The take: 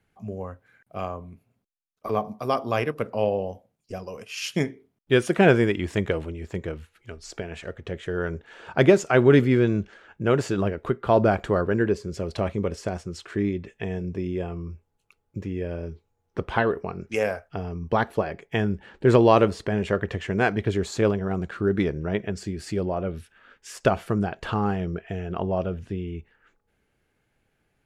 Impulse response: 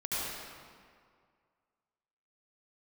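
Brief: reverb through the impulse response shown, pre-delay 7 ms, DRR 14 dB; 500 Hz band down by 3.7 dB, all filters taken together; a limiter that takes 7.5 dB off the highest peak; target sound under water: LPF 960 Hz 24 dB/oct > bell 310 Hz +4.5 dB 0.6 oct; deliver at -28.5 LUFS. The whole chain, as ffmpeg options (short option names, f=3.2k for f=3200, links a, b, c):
-filter_complex "[0:a]equalizer=f=500:t=o:g=-7,alimiter=limit=-14.5dB:level=0:latency=1,asplit=2[a][b];[1:a]atrim=start_sample=2205,adelay=7[c];[b][c]afir=irnorm=-1:irlink=0,volume=-20.5dB[d];[a][d]amix=inputs=2:normalize=0,lowpass=f=960:w=0.5412,lowpass=f=960:w=1.3066,equalizer=f=310:t=o:w=0.6:g=4.5"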